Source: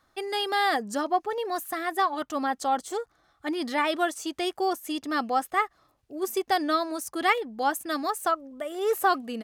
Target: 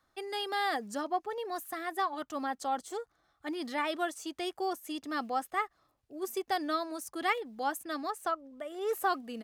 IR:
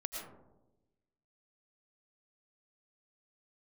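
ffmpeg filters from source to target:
-filter_complex "[0:a]acrossover=split=190[a][b];[a]acrusher=bits=5:mode=log:mix=0:aa=0.000001[c];[c][b]amix=inputs=2:normalize=0,asettb=1/sr,asplit=3[d][e][f];[d]atrim=end=7.834[g];[e]atrim=start=7.83:end=8.89,asetpts=PTS-STARTPTS,afade=t=in:d=0.004:c=qsin,afade=t=out:st=1.056:d=0.004:c=qsin,highshelf=f=8.3k:g=-8[h];[f]atrim=start=8.886[i];[g][h]acrossfade=d=0.004:c1=hsin:c2=qsin[j];[j][i]acrossfade=d=0.004:c1=qsin:c2=hsin,volume=-7dB"

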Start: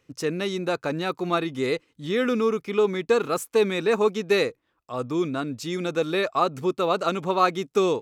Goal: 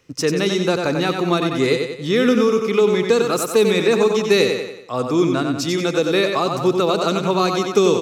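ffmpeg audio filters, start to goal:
-filter_complex "[0:a]equalizer=f=5.4k:w=2.3:g=5,aecho=1:1:92|184|276|368|460:0.501|0.226|0.101|0.0457|0.0206,acrossover=split=420|3000[a][b][c];[b]acompressor=threshold=-27dB:ratio=6[d];[a][d][c]amix=inputs=3:normalize=0,volume=7.5dB"

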